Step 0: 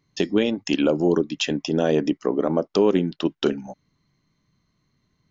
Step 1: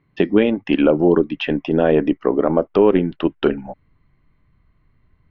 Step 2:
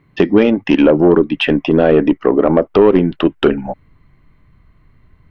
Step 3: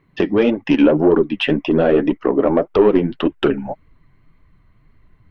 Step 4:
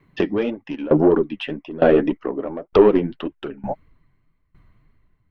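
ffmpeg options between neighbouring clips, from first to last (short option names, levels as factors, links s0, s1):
-af "lowpass=f=2600:w=0.5412,lowpass=f=2600:w=1.3066,asubboost=boost=7:cutoff=69,volume=2"
-filter_complex "[0:a]asplit=2[s0][s1];[s1]acompressor=threshold=0.0891:ratio=6,volume=0.841[s2];[s0][s2]amix=inputs=2:normalize=0,asoftclip=type=tanh:threshold=0.596,volume=1.58"
-af "flanger=delay=1.6:depth=9.2:regen=26:speed=1.8:shape=triangular"
-af "aeval=exprs='val(0)*pow(10,-21*if(lt(mod(1.1*n/s,1),2*abs(1.1)/1000),1-mod(1.1*n/s,1)/(2*abs(1.1)/1000),(mod(1.1*n/s,1)-2*abs(1.1)/1000)/(1-2*abs(1.1)/1000))/20)':c=same,volume=1.33"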